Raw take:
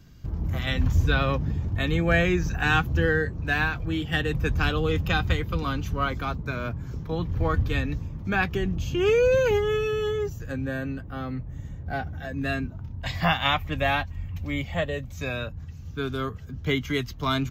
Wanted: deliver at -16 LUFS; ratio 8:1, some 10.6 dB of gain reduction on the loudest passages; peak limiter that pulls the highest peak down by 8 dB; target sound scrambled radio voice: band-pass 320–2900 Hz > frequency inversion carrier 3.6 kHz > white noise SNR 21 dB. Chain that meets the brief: compression 8:1, threshold -28 dBFS; peak limiter -25 dBFS; band-pass 320–2900 Hz; frequency inversion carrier 3.6 kHz; white noise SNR 21 dB; trim +20 dB

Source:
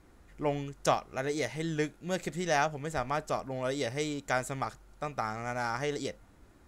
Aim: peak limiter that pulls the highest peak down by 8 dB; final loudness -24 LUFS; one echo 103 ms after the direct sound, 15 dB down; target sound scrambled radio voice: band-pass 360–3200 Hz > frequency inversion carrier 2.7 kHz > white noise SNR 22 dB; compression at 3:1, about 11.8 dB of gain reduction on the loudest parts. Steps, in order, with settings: compression 3:1, threshold -38 dBFS; peak limiter -31 dBFS; band-pass 360–3200 Hz; delay 103 ms -15 dB; frequency inversion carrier 2.7 kHz; white noise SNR 22 dB; trim +19 dB

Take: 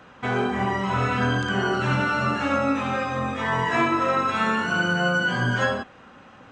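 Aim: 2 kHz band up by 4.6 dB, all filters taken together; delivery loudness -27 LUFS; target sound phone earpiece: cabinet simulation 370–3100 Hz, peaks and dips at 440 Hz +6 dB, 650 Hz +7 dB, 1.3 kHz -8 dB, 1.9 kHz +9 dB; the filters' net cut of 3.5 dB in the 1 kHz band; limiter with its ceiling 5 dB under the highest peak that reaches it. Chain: peaking EQ 1 kHz -5 dB; peaking EQ 2 kHz +5.5 dB; peak limiter -15 dBFS; cabinet simulation 370–3100 Hz, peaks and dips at 440 Hz +6 dB, 650 Hz +7 dB, 1.3 kHz -8 dB, 1.9 kHz +9 dB; trim -4 dB

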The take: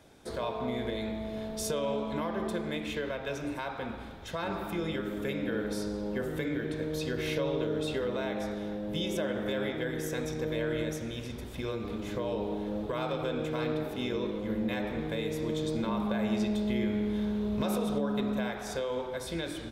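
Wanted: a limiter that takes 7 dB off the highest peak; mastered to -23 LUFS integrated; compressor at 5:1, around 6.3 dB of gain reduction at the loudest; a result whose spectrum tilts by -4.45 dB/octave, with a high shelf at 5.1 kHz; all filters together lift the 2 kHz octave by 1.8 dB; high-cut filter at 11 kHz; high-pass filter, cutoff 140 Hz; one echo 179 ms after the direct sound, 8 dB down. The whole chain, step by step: high-pass 140 Hz; low-pass 11 kHz; peaking EQ 2 kHz +3 dB; treble shelf 5.1 kHz -5 dB; compression 5:1, threshold -34 dBFS; peak limiter -29.5 dBFS; delay 179 ms -8 dB; trim +15.5 dB

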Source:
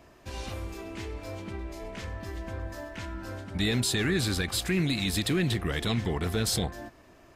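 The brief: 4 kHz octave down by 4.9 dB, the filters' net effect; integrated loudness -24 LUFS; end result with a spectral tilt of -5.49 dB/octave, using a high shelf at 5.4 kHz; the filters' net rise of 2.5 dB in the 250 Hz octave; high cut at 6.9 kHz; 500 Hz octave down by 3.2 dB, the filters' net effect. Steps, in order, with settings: low-pass 6.9 kHz; peaking EQ 250 Hz +5.5 dB; peaking EQ 500 Hz -7.5 dB; peaking EQ 4 kHz -3.5 dB; treble shelf 5.4 kHz -4 dB; trim +6.5 dB

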